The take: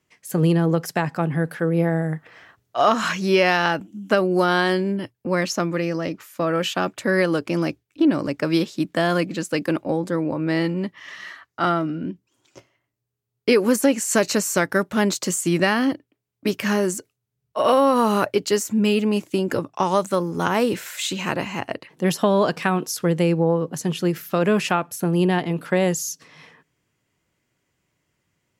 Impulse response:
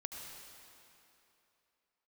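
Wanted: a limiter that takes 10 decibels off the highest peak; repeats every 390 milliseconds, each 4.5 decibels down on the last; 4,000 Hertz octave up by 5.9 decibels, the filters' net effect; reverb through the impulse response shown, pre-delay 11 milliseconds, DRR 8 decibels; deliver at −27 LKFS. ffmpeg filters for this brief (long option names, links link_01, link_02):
-filter_complex "[0:a]equalizer=frequency=4000:width_type=o:gain=8,alimiter=limit=-12dB:level=0:latency=1,aecho=1:1:390|780|1170|1560|1950|2340|2730|3120|3510:0.596|0.357|0.214|0.129|0.0772|0.0463|0.0278|0.0167|0.01,asplit=2[link_01][link_02];[1:a]atrim=start_sample=2205,adelay=11[link_03];[link_02][link_03]afir=irnorm=-1:irlink=0,volume=-6.5dB[link_04];[link_01][link_04]amix=inputs=2:normalize=0,volume=-5.5dB"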